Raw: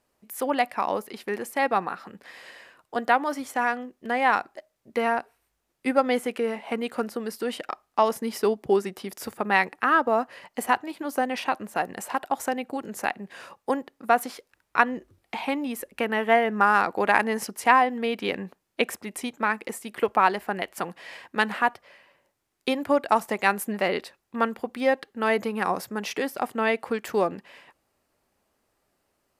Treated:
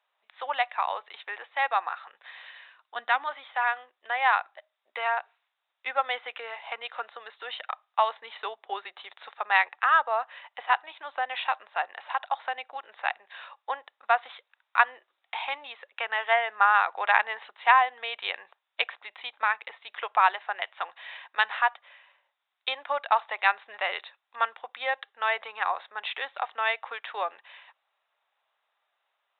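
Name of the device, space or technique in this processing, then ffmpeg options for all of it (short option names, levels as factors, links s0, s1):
musical greeting card: -filter_complex "[0:a]asplit=3[s0][s1][s2];[s0]afade=t=out:st=2.45:d=0.02[s3];[s1]asubboost=boost=12:cutoff=190,afade=t=in:st=2.45:d=0.02,afade=t=out:st=3.27:d=0.02[s4];[s2]afade=t=in:st=3.27:d=0.02[s5];[s3][s4][s5]amix=inputs=3:normalize=0,aresample=8000,aresample=44100,highpass=f=750:w=0.5412,highpass=f=750:w=1.3066,equalizer=f=3700:t=o:w=0.24:g=9"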